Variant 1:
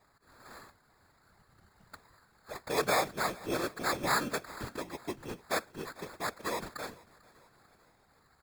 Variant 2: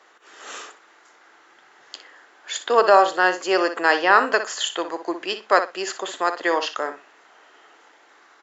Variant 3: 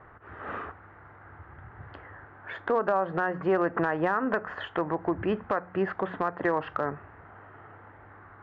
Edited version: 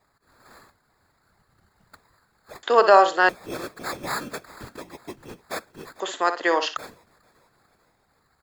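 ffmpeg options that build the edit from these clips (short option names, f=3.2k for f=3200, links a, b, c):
-filter_complex "[1:a]asplit=2[a][b];[0:a]asplit=3[c][d][e];[c]atrim=end=2.632[f];[a]atrim=start=2.628:end=3.292[g];[d]atrim=start=3.288:end=6.002[h];[b]atrim=start=5.998:end=6.772[i];[e]atrim=start=6.768[j];[f][g]acrossfade=d=0.004:c1=hsin:c2=hsin[k];[k][h]acrossfade=d=0.004:c1=hsin:c2=hsin[l];[l][i]acrossfade=d=0.004:c1=hsin:c2=hsin[m];[m][j]acrossfade=d=0.004:c1=hsin:c2=hsin"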